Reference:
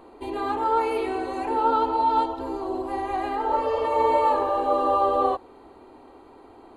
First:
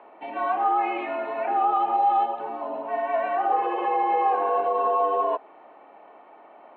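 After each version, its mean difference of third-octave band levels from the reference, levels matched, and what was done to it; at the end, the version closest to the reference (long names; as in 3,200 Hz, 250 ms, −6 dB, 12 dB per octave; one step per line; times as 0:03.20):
7.0 dB: sub-octave generator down 2 octaves, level −5 dB
brickwall limiter −17 dBFS, peak gain reduction 7 dB
single-sideband voice off tune −96 Hz 600–2,900 Hz
level +4 dB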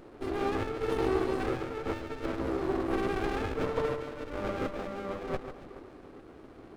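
10.0 dB: compressor whose output falls as the input rises −26 dBFS, ratio −0.5
on a send: delay that swaps between a low-pass and a high-pass 142 ms, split 1,000 Hz, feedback 64%, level −7.5 dB
on the sum: windowed peak hold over 33 samples
level −3.5 dB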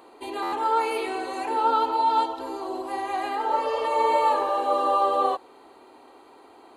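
4.0 dB: high-pass filter 440 Hz 6 dB per octave
high-shelf EQ 2,600 Hz +7.5 dB
buffer that repeats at 0:00.42, samples 512, times 8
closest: third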